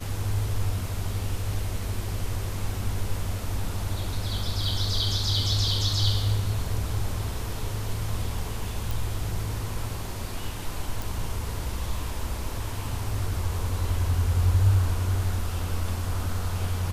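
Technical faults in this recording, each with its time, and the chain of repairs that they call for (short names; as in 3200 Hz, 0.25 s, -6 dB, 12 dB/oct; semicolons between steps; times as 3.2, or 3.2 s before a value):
8.91 pop
11.02 pop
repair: de-click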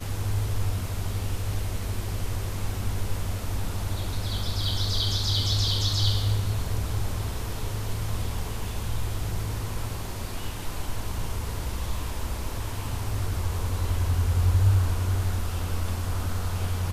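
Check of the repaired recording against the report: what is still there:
none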